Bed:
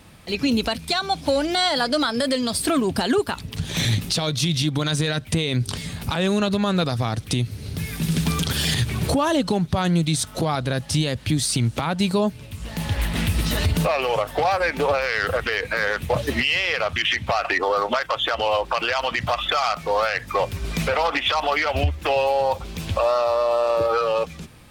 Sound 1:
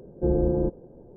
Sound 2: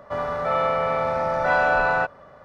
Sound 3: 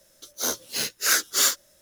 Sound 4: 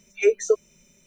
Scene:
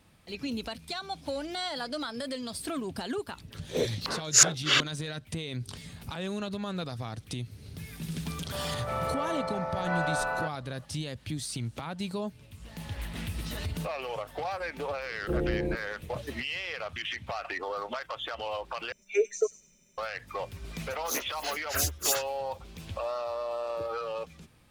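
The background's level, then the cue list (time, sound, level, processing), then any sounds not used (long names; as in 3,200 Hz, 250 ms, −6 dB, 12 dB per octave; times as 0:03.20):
bed −13.5 dB
0:03.32: mix in 3 −1.5 dB + low-pass on a step sequencer 5.4 Hz 290–7,000 Hz
0:08.42: mix in 2 −10.5 dB
0:15.06: mix in 1 −6.5 dB
0:18.92: overwrite with 4 −7 dB + delay with a high-pass on its return 98 ms, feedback 34%, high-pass 5,300 Hz, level −4 dB
0:20.68: mix in 3 −4 dB + phaser with staggered stages 4.2 Hz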